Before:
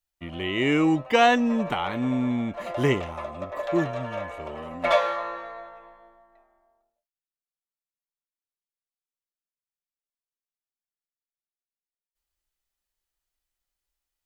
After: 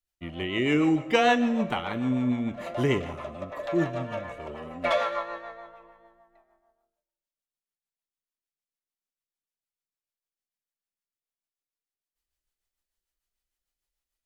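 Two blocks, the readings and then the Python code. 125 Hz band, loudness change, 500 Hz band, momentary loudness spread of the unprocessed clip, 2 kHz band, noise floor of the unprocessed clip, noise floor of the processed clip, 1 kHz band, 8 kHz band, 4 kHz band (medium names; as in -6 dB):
-1.0 dB, -2.0 dB, -2.5 dB, 17 LU, -2.5 dB, under -85 dBFS, under -85 dBFS, -3.5 dB, no reading, -2.5 dB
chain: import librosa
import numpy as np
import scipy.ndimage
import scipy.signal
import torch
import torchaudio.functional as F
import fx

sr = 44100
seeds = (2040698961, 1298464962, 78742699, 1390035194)

y = fx.rev_schroeder(x, sr, rt60_s=1.2, comb_ms=32, drr_db=12.5)
y = fx.rotary(y, sr, hz=6.7)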